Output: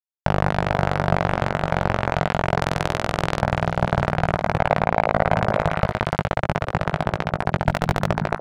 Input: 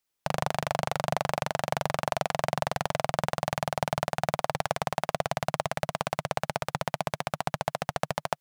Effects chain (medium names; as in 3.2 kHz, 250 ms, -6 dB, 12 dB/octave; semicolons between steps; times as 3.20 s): 7.68–8.08 s: square wave that keeps the level; RIAA curve playback; 2.59–3.40 s: transient shaper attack -4 dB, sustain +3 dB; 4.57–5.33 s: peaking EQ 700 Hz +7.5 dB 2.1 oct; power-law waveshaper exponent 2; doubling 19 ms -5 dB; repeats whose band climbs or falls 180 ms, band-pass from 180 Hz, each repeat 1.4 oct, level -9 dB; loudness maximiser +15.5 dB; trim -1 dB